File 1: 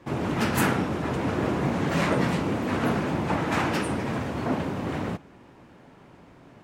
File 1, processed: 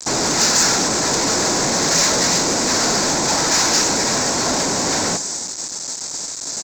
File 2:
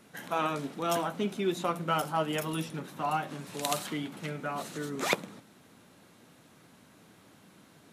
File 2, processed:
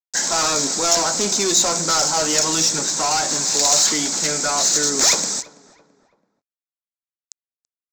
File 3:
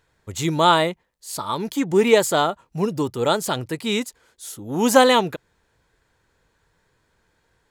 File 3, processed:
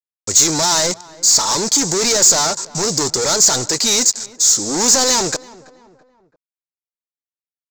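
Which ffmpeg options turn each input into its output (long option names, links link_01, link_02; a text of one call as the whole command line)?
ffmpeg -i in.wav -filter_complex "[0:a]agate=range=-8dB:threshold=-50dB:ratio=16:detection=peak,bandreject=frequency=1200:width=10,asplit=2[link_01][link_02];[link_02]highpass=frequency=720:poles=1,volume=37dB,asoftclip=type=tanh:threshold=-2dB[link_03];[link_01][link_03]amix=inputs=2:normalize=0,lowpass=frequency=2700:poles=1,volume=-6dB,aresample=16000,acrusher=bits=4:mix=0:aa=0.000001,aresample=44100,aexciter=amount=11:drive=9:freq=4600,asplit=2[link_04][link_05];[link_05]adelay=332,lowpass=frequency=1900:poles=1,volume=-20dB,asplit=2[link_06][link_07];[link_07]adelay=332,lowpass=frequency=1900:poles=1,volume=0.45,asplit=2[link_08][link_09];[link_09]adelay=332,lowpass=frequency=1900:poles=1,volume=0.45[link_10];[link_06][link_08][link_10]amix=inputs=3:normalize=0[link_11];[link_04][link_11]amix=inputs=2:normalize=0,volume=-11dB" out.wav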